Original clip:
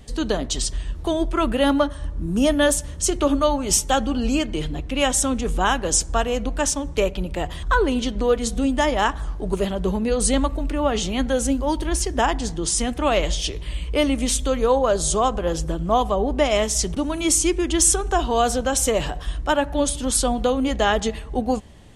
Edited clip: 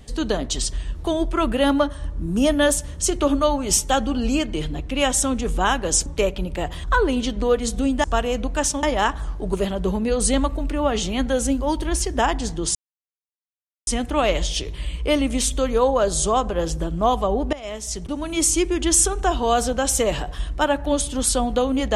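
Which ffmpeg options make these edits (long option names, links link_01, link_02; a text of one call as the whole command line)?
ffmpeg -i in.wav -filter_complex "[0:a]asplit=6[link_01][link_02][link_03][link_04][link_05][link_06];[link_01]atrim=end=6.062[link_07];[link_02]atrim=start=6.848:end=8.832[link_08];[link_03]atrim=start=6.058:end=6.852[link_09];[link_04]atrim=start=8.828:end=12.75,asetpts=PTS-STARTPTS,afade=type=out:start_time=3.918:duration=0.004:curve=hsin,apad=pad_dur=1.12[link_10];[link_05]atrim=start=12.75:end=16.41,asetpts=PTS-STARTPTS,afade=type=in:duration=0.004:curve=hsin,afade=type=out:start_time=3.656:duration=0.004:curve=hsin:silence=0.112202[link_11];[link_06]atrim=start=16.41,asetpts=PTS-STARTPTS,afade=type=in:duration=1:silence=0.112202[link_12];[link_07][link_08]acrossfade=duration=0.004:curve1=hsin:curve2=hsin[link_13];[link_13][link_09]acrossfade=duration=0.004:curve1=hsin:curve2=hsin[link_14];[link_10][link_11][link_12]concat=n=3:v=0:a=1[link_15];[link_14][link_15]acrossfade=duration=0.004:curve1=hsin:curve2=hsin" out.wav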